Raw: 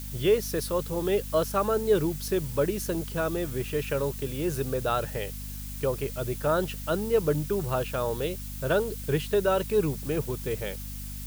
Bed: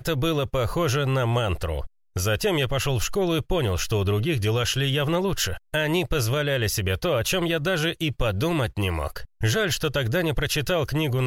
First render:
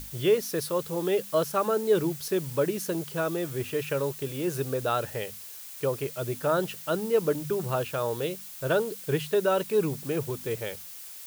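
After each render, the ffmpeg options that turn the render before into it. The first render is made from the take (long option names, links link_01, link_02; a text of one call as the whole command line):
ffmpeg -i in.wav -af "bandreject=frequency=50:width_type=h:width=6,bandreject=frequency=100:width_type=h:width=6,bandreject=frequency=150:width_type=h:width=6,bandreject=frequency=200:width_type=h:width=6,bandreject=frequency=250:width_type=h:width=6" out.wav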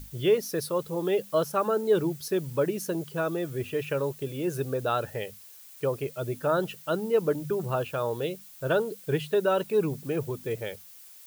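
ffmpeg -i in.wav -af "afftdn=noise_reduction=8:noise_floor=-43" out.wav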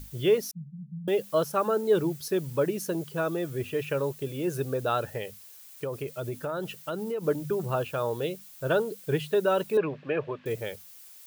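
ffmpeg -i in.wav -filter_complex "[0:a]asettb=1/sr,asplit=3[link_01][link_02][link_03];[link_01]atrim=end=0.514[link_04];[link_02]atrim=start=0.51:end=1.08,asetpts=PTS-STARTPTS,afade=type=in:duration=0.004:curve=qsin,afade=type=out:start_time=0.566:duration=0.004:curve=qsin,asuperpass=centerf=170:order=20:qfactor=2.2[link_05];[link_03]atrim=start=1.076[link_06];[link_04][link_05]acrossfade=duration=0.004:curve1=hsin:curve2=qsin[link_07];[link_07][link_06]acrossfade=duration=0.004:curve1=qsin:curve2=hsin,asettb=1/sr,asplit=3[link_08][link_09][link_10];[link_08]atrim=end=5.174[link_11];[link_09]atrim=start=5.17:end=7.25,asetpts=PTS-STARTPTS,afade=type=in:duration=0.004:curve=qsin,afade=type=out:start_time=2.076:duration=0.004:curve=qsin,acompressor=threshold=-28dB:ratio=6:attack=3.2:release=140:knee=1:detection=peak[link_12];[link_10]atrim=start=7.246[link_13];[link_11][link_12]acrossfade=duration=0.004:curve1=hsin:curve2=qsin[link_14];[link_14][link_13]acrossfade=duration=0.004:curve1=qsin:curve2=hsin,asettb=1/sr,asplit=3[link_15][link_16][link_17];[link_15]atrim=end=9.774[link_18];[link_16]atrim=start=9.77:end=10.46,asetpts=PTS-STARTPTS,afade=type=in:duration=0.004:curve=qsin,afade=type=out:start_time=0.686:duration=0.004:curve=qsin,highpass=180,equalizer=frequency=210:width_type=q:width=4:gain=-7,equalizer=frequency=340:width_type=q:width=4:gain=-3,equalizer=frequency=590:width_type=q:width=4:gain=9,equalizer=frequency=1100:width_type=q:width=4:gain=7,equalizer=frequency=1700:width_type=q:width=4:gain=10,equalizer=frequency=2600:width_type=q:width=4:gain=7,lowpass=frequency=3500:width=0.5412,lowpass=frequency=3500:width=1.3066[link_19];[link_17]atrim=start=10.456[link_20];[link_18][link_19]acrossfade=duration=0.004:curve1=hsin:curve2=qsin[link_21];[link_21][link_20]acrossfade=duration=0.004:curve1=qsin:curve2=hsin" out.wav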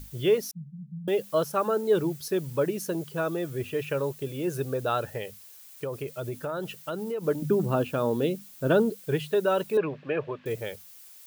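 ffmpeg -i in.wav -filter_complex "[0:a]asettb=1/sr,asplit=3[link_01][link_02][link_03];[link_01]atrim=end=7.424[link_04];[link_02]atrim=start=7.42:end=8.9,asetpts=PTS-STARTPTS,afade=type=in:duration=0.004:curve=qsin,afade=type=out:start_time=1.476:duration=0.004:curve=qsin,equalizer=frequency=240:width=1.5:gain=14[link_05];[link_03]atrim=start=8.896[link_06];[link_04][link_05]acrossfade=duration=0.004:curve1=hsin:curve2=qsin[link_07];[link_07][link_06]acrossfade=duration=0.004:curve1=qsin:curve2=hsin" out.wav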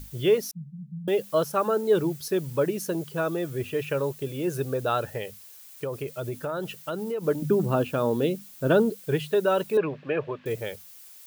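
ffmpeg -i in.wav -af "volume=1.5dB" out.wav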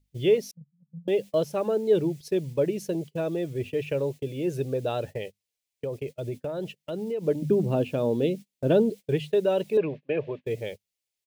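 ffmpeg -i in.wav -af "agate=range=-28dB:threshold=-35dB:ratio=16:detection=peak,firequalizer=gain_entry='entry(580,0);entry(1300,-15);entry(2100,-1);entry(16000,-15)':delay=0.05:min_phase=1" out.wav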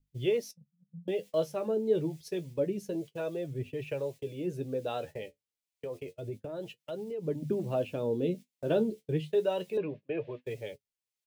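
ffmpeg -i in.wav -filter_complex "[0:a]acrossover=split=430[link_01][link_02];[link_01]aeval=exprs='val(0)*(1-0.5/2+0.5/2*cos(2*PI*1.1*n/s))':channel_layout=same[link_03];[link_02]aeval=exprs='val(0)*(1-0.5/2-0.5/2*cos(2*PI*1.1*n/s))':channel_layout=same[link_04];[link_03][link_04]amix=inputs=2:normalize=0,flanger=delay=6.9:depth=7.1:regen=47:speed=0.28:shape=triangular" out.wav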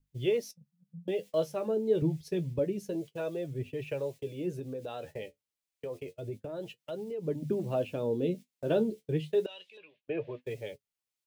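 ffmpeg -i in.wav -filter_complex "[0:a]asettb=1/sr,asplit=3[link_01][link_02][link_03];[link_01]atrim=end=2.024[link_04];[link_02]atrim=start=2.02:end=2.59,asetpts=PTS-STARTPTS,afade=type=in:duration=0.004:curve=qsin,afade=type=out:start_time=0.566:duration=0.004:curve=qsin,bass=frequency=250:gain=10,treble=frequency=4000:gain=-3[link_05];[link_03]atrim=start=2.586[link_06];[link_04][link_05]acrossfade=duration=0.004:curve1=hsin:curve2=qsin[link_07];[link_07][link_06]acrossfade=duration=0.004:curve1=qsin:curve2=hsin,asettb=1/sr,asplit=3[link_08][link_09][link_10];[link_08]atrim=end=4.594[link_11];[link_09]atrim=start=4.59:end=5.16,asetpts=PTS-STARTPTS,afade=type=in:duration=0.004:curve=qsin,afade=type=out:start_time=0.566:duration=0.004:curve=qsin,acompressor=threshold=-36dB:ratio=3:attack=3.2:release=140:knee=1:detection=peak[link_12];[link_10]atrim=start=5.156[link_13];[link_11][link_12]acrossfade=duration=0.004:curve1=hsin:curve2=qsin[link_14];[link_14][link_13]acrossfade=duration=0.004:curve1=qsin:curve2=hsin,asettb=1/sr,asplit=3[link_15][link_16][link_17];[link_15]atrim=end=9.464[link_18];[link_16]atrim=start=9.46:end=10.08,asetpts=PTS-STARTPTS,afade=type=in:duration=0.004:curve=qsin,afade=type=out:start_time=0.616:duration=0.004:curve=qsin,bandpass=frequency=3200:width_type=q:width=2.3[link_19];[link_17]atrim=start=10.076[link_20];[link_18][link_19]acrossfade=duration=0.004:curve1=hsin:curve2=qsin[link_21];[link_21][link_20]acrossfade=duration=0.004:curve1=qsin:curve2=hsin" out.wav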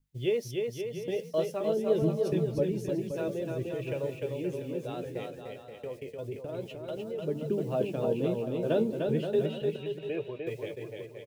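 ffmpeg -i in.wav -af "aecho=1:1:300|525|693.8|820.3|915.2:0.631|0.398|0.251|0.158|0.1" out.wav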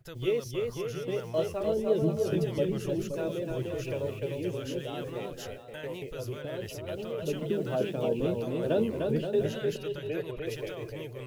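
ffmpeg -i in.wav -i bed.wav -filter_complex "[1:a]volume=-19.5dB[link_01];[0:a][link_01]amix=inputs=2:normalize=0" out.wav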